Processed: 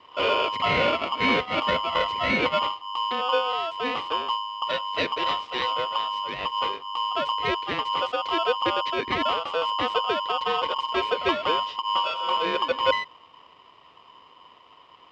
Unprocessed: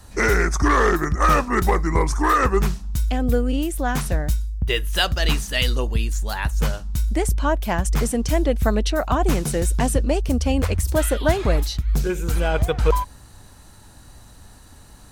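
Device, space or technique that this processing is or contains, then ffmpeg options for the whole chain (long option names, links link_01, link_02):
ring modulator pedal into a guitar cabinet: -filter_complex "[0:a]aeval=exprs='val(0)*sgn(sin(2*PI*1000*n/s))':channel_layout=same,highpass=91,equalizer=frequency=130:width_type=q:width=4:gain=-8,equalizer=frequency=200:width_type=q:width=4:gain=-6,equalizer=frequency=500:width_type=q:width=4:gain=6,equalizer=frequency=850:width_type=q:width=4:gain=-9,equalizer=frequency=1600:width_type=q:width=4:gain=-9,lowpass=frequency=3400:width=0.5412,lowpass=frequency=3400:width=1.3066,asettb=1/sr,asplit=3[link_01][link_02][link_03];[link_01]atrim=end=11.954[link_04];[link_02]atrim=start=11.95:end=12.37,asetpts=PTS-STARTPTS,afade=type=in:duration=0.004:curve=qsin,afade=type=out:start_time=0.416:duration=0.004:curve=qsin,aecho=1:1:5.4:0.99,atrim=end_sample=18522[link_05];[link_03]atrim=start=12.366[link_06];[link_04][link_05]acrossfade=duration=0.004:curve1=hsin:curve2=qsin[link_07];[link_07][link_06]acrossfade=duration=0.004:curve1=qsin:curve2=hsin,volume=-3dB"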